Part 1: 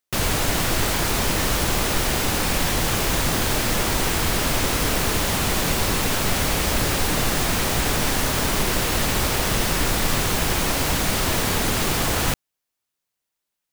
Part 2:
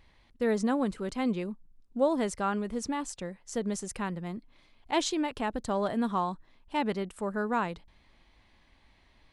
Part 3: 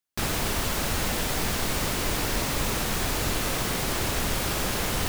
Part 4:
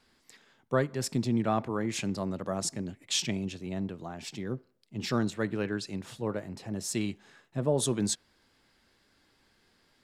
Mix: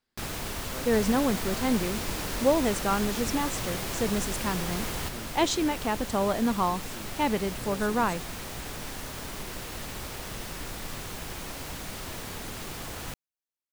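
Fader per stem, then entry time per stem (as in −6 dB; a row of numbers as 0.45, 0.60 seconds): −16.0, +3.0, −7.5, −15.0 decibels; 0.80, 0.45, 0.00, 0.00 seconds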